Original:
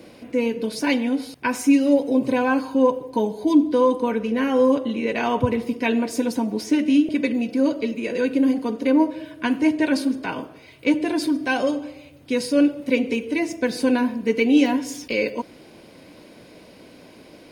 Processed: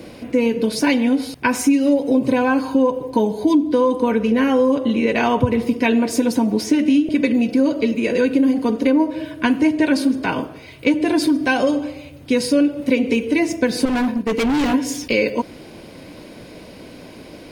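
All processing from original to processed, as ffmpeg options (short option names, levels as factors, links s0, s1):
-filter_complex "[0:a]asettb=1/sr,asplit=3[s0][s1][s2];[s0]atrim=end=13.854[s3];[s1]atrim=start=13.85:end=14.74,asetpts=PTS-STARTPTS,afade=t=in:d=0.004:c=qsin,afade=t=out:st=0.886:d=0.004:c=qsin,agate=range=0.0224:threshold=0.0447:ratio=3:release=100:detection=peak,volume=15,asoftclip=hard,volume=0.0668[s4];[s2]atrim=start=14.736[s5];[s3][s4]acrossfade=d=0.004:c1=hsin:c2=qsin[s6];[s6][s5]acrossfade=d=0.004:c1=qsin:c2=hsin,lowshelf=f=110:g=8,acompressor=threshold=0.112:ratio=5,volume=2.11"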